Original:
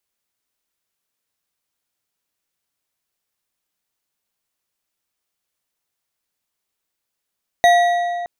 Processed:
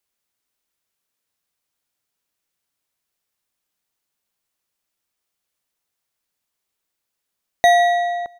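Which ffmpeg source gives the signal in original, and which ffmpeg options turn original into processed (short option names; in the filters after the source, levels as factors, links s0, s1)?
-f lavfi -i "aevalsrc='0.398*pow(10,-3*t/2.28)*sin(2*PI*700*t)+0.178*pow(10,-3*t/1.682)*sin(2*PI*1929.9*t)+0.0794*pow(10,-3*t/1.374)*sin(2*PI*3782.8*t)+0.0355*pow(10,-3*t/1.182)*sin(2*PI*6253.1*t)+0.0158*pow(10,-3*t/1.048)*sin(2*PI*9338*t)+0.00708*pow(10,-3*t/0.948)*sin(2*PI*13048*t)':d=0.62:s=44100"
-af "aecho=1:1:156:0.0891"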